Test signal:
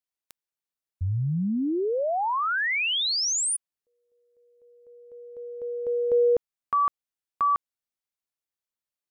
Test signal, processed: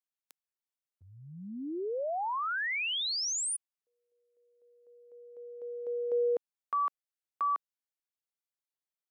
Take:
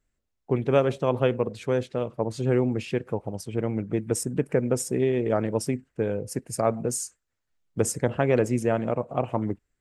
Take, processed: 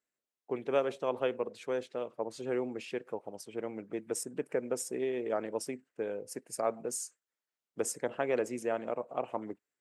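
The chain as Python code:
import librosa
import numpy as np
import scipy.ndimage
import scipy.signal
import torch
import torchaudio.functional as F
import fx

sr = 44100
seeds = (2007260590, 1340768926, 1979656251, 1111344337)

y = scipy.signal.sosfilt(scipy.signal.butter(2, 340.0, 'highpass', fs=sr, output='sos'), x)
y = y * librosa.db_to_amplitude(-7.0)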